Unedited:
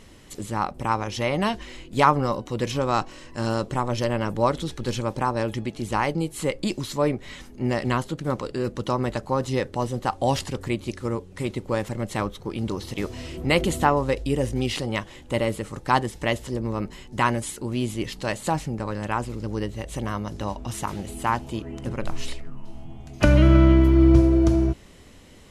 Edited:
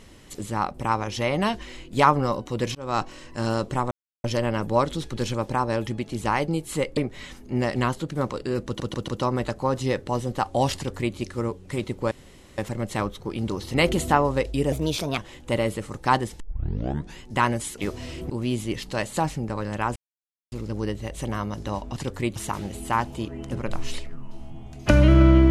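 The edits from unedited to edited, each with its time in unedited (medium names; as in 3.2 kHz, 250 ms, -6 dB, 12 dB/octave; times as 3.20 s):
2.75–3.01 s: fade in
3.91 s: insert silence 0.33 s
6.64–7.06 s: delete
8.75 s: stutter 0.14 s, 4 plays
10.43–10.83 s: copy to 20.70 s
11.78 s: insert room tone 0.47 s
12.94–13.46 s: move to 17.60 s
14.44–15.00 s: speed 122%
16.22 s: tape start 0.80 s
19.26 s: insert silence 0.56 s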